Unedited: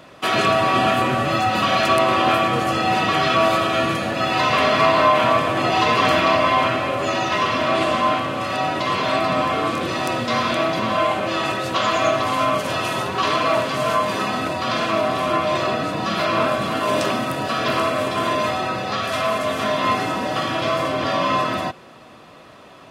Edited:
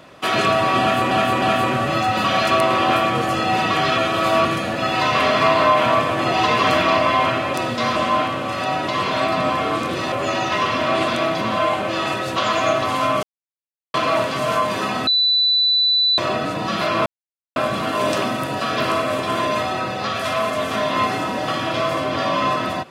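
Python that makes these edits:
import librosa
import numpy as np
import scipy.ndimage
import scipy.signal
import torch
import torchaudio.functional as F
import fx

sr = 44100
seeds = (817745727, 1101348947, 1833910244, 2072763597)

y = fx.edit(x, sr, fx.repeat(start_s=0.8, length_s=0.31, count=3),
    fx.reverse_span(start_s=3.36, length_s=0.47),
    fx.swap(start_s=6.92, length_s=0.96, other_s=10.04, other_length_s=0.42),
    fx.silence(start_s=12.61, length_s=0.71),
    fx.bleep(start_s=14.45, length_s=1.11, hz=3980.0, db=-13.5),
    fx.insert_silence(at_s=16.44, length_s=0.5), tone=tone)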